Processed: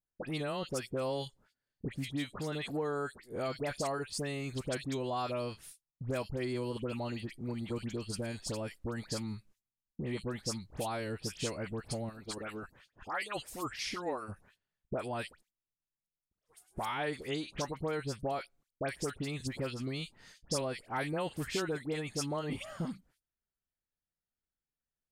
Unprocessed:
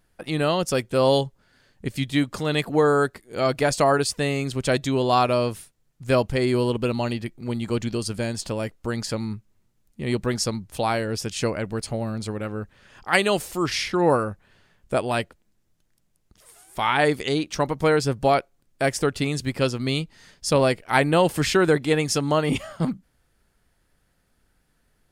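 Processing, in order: gate -48 dBFS, range -31 dB; 12.09–14.29 harmonic-percussive split harmonic -17 dB; compressor 3:1, threshold -38 dBFS, peak gain reduction 17.5 dB; dispersion highs, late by 82 ms, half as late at 1800 Hz

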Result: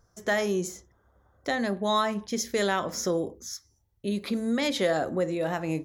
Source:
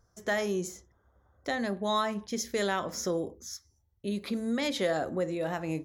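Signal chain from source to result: bell 76 Hz -9 dB 0.23 oct; gain +3.5 dB

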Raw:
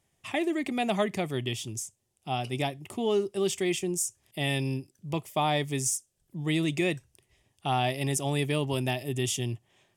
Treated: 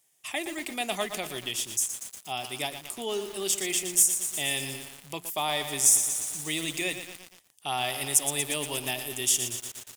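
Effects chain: RIAA curve recording; de-hum 86.77 Hz, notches 4; lo-fi delay 0.118 s, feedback 80%, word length 6-bit, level -8 dB; gain -2.5 dB

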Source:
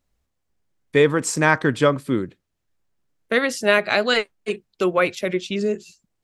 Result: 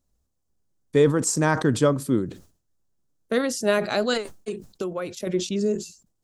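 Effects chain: EQ curve 250 Hz 0 dB, 1400 Hz -6 dB, 2200 Hz -12 dB, 6500 Hz +6 dB; 4.17–5.27 compressor 5:1, threshold -27 dBFS, peak gain reduction 9 dB; high shelf 4500 Hz -6.5 dB; sustainer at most 130 dB/s

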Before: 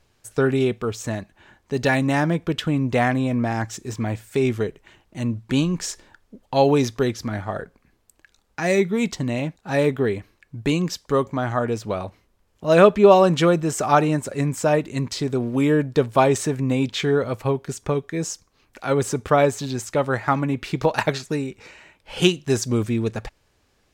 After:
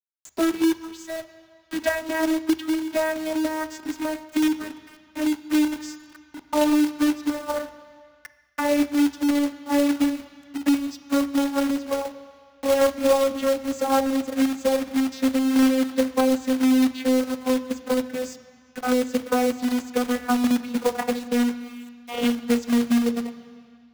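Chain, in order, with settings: vocoder on a gliding note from E4, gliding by -6 st; spectral noise reduction 20 dB; dynamic EQ 150 Hz, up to +3 dB, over -39 dBFS, Q 1.4; companded quantiser 4-bit; on a send at -12.5 dB: reverb RT60 1.1 s, pre-delay 3 ms; on the sum: three-band squash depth 70%; gain -1.5 dB

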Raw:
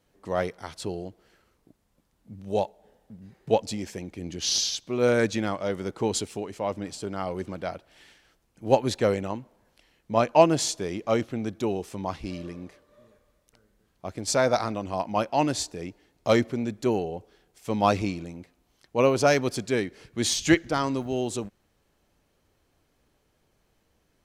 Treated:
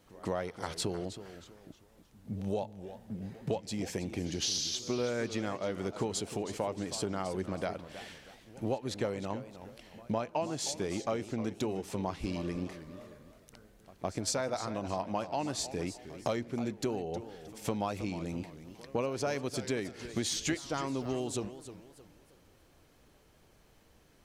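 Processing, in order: compressor 10:1, threshold -36 dBFS, peak gain reduction 24.5 dB; pre-echo 0.159 s -21 dB; warbling echo 0.315 s, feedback 36%, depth 180 cents, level -12.5 dB; gain +5.5 dB

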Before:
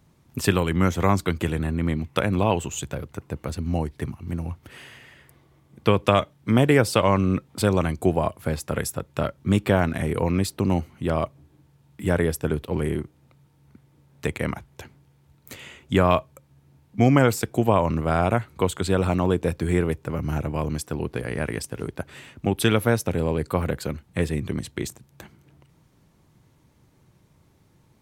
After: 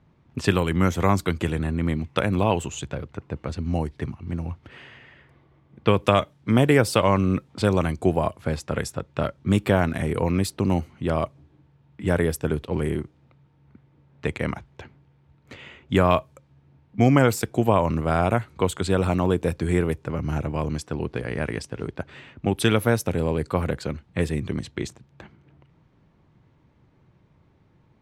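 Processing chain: low-pass opened by the level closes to 2800 Hz, open at -18 dBFS

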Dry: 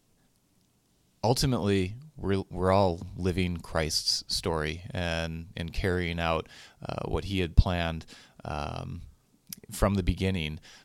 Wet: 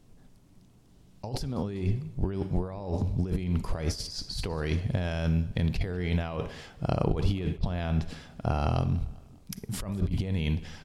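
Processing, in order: Schroeder reverb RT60 0.44 s, DRR 15.5 dB; negative-ratio compressor -34 dBFS, ratio -1; tilt -2 dB/oct; feedback echo 0.198 s, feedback 49%, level -22 dB

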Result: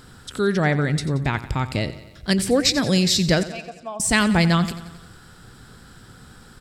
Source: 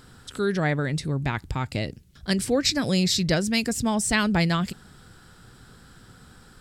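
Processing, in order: 3.43–4 vowel filter a; feedback echo 89 ms, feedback 59%, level -15 dB; gain +4 dB

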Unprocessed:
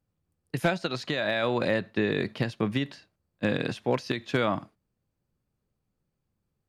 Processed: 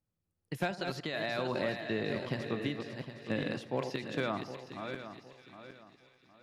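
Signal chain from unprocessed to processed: regenerating reverse delay 0.396 s, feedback 55%, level -6.5 dB; varispeed +4%; split-band echo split 1700 Hz, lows 84 ms, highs 0.6 s, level -15.5 dB; gain -8 dB

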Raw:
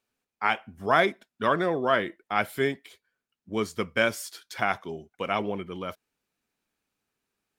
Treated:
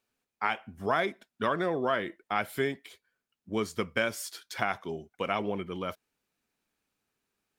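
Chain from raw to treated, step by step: compressor 2.5:1, threshold -26 dBFS, peak gain reduction 7.5 dB

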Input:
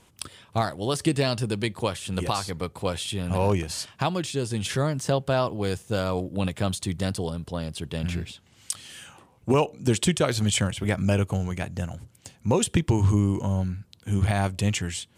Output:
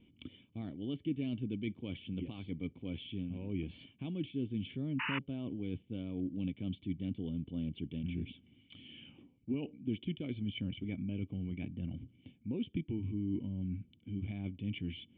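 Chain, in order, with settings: rattling part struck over -18 dBFS, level -33 dBFS; reverse; compressor, threshold -31 dBFS, peak gain reduction 14.5 dB; reverse; vocal tract filter i; painted sound noise, 4.99–5.19, 880–3000 Hz -43 dBFS; gain +6 dB

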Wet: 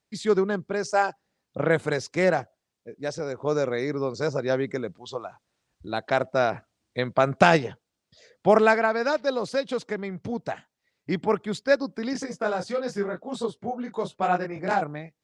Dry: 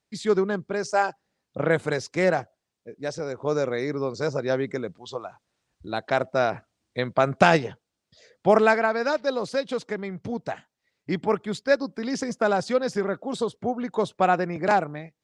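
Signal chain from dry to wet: 12.13–14.82 detuned doubles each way 29 cents

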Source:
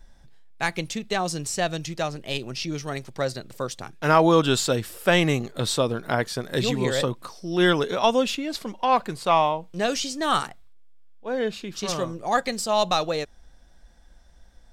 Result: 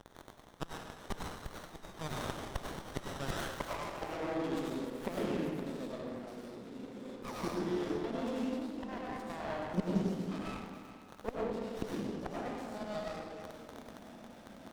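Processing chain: transient shaper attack -5 dB, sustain +7 dB; level quantiser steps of 11 dB; crackle 42/s -42 dBFS; high-pass sweep 3100 Hz -> 230 Hz, 3.02–4.28; flipped gate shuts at -25 dBFS, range -26 dB; echo 0.426 s -15.5 dB; reverb RT60 1.9 s, pre-delay 60 ms, DRR -6 dB; running maximum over 17 samples; gain +4 dB

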